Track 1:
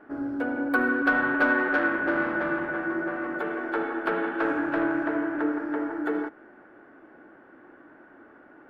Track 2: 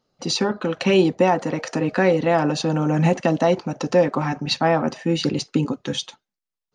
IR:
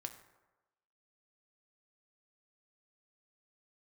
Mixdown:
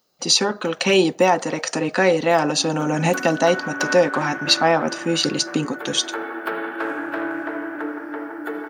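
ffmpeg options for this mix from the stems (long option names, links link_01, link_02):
-filter_complex "[0:a]adelay=2400,volume=-1dB,asplit=2[link_01][link_02];[link_02]volume=-7dB[link_03];[1:a]volume=1.5dB,asplit=3[link_04][link_05][link_06];[link_05]volume=-15dB[link_07];[link_06]apad=whole_len=489481[link_08];[link_01][link_08]sidechaincompress=threshold=-23dB:ratio=8:attack=49:release=636[link_09];[2:a]atrim=start_sample=2205[link_10];[link_03][link_07]amix=inputs=2:normalize=0[link_11];[link_11][link_10]afir=irnorm=-1:irlink=0[link_12];[link_09][link_04][link_12]amix=inputs=3:normalize=0,aemphasis=mode=production:type=bsi"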